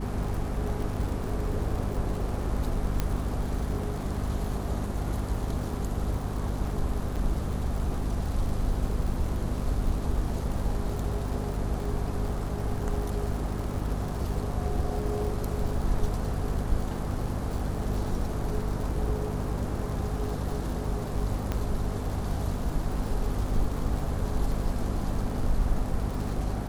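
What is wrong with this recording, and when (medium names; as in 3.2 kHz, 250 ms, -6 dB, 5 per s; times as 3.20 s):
crackle 120 per s -35 dBFS
hum 50 Hz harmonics 5 -33 dBFS
3.00 s: pop -13 dBFS
7.16–7.17 s: dropout 6.8 ms
21.52 s: pop -16 dBFS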